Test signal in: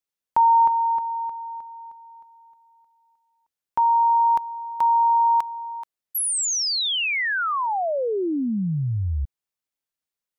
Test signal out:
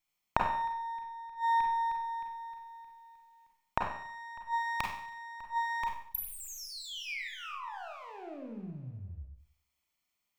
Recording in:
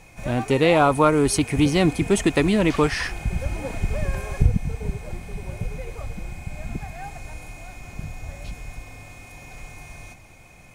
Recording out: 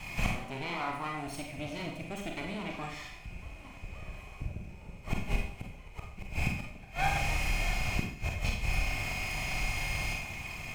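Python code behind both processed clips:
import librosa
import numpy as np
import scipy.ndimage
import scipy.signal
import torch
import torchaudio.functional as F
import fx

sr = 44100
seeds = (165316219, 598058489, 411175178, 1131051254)

y = fx.lower_of_two(x, sr, delay_ms=0.94)
y = fx.gate_flip(y, sr, shuts_db=-24.0, range_db=-25)
y = fx.graphic_eq_31(y, sr, hz=(630, 2500, 10000), db=(6, 9, -5))
y = fx.rev_schroeder(y, sr, rt60_s=0.59, comb_ms=31, drr_db=0.5)
y = y * 10.0 ** (4.5 / 20.0)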